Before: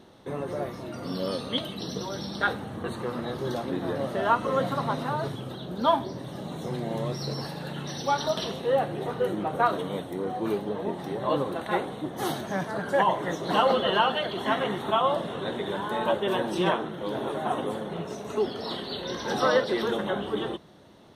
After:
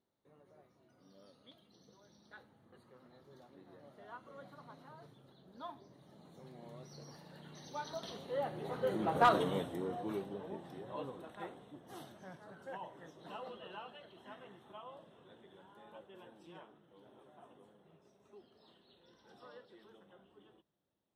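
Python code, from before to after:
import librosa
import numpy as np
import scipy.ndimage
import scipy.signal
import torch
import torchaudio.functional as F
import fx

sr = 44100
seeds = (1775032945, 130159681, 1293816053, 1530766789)

y = fx.doppler_pass(x, sr, speed_mps=14, closest_m=3.9, pass_at_s=9.33)
y = np.clip(10.0 ** (16.0 / 20.0) * y, -1.0, 1.0) / 10.0 ** (16.0 / 20.0)
y = F.gain(torch.from_numpy(y), -2.0).numpy()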